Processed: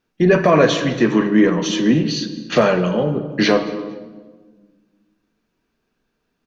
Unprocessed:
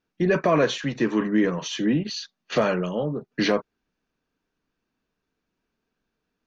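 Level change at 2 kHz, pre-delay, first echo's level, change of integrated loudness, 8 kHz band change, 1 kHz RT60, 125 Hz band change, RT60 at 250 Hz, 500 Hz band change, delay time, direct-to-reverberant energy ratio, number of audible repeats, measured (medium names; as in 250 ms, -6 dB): +7.0 dB, 5 ms, -22.0 dB, +7.5 dB, no reading, 1.3 s, +8.0 dB, 2.1 s, +7.5 dB, 230 ms, 7.5 dB, 2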